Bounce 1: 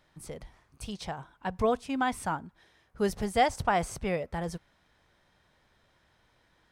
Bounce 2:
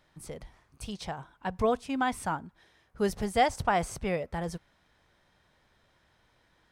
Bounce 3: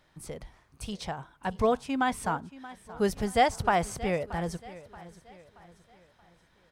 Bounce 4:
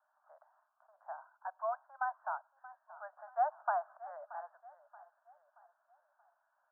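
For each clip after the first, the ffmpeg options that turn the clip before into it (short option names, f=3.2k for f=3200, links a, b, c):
-af anull
-af "aecho=1:1:628|1256|1884|2512:0.133|0.0573|0.0247|0.0106,volume=1.5dB"
-af "asuperpass=centerf=990:order=20:qfactor=0.97,volume=-7.5dB"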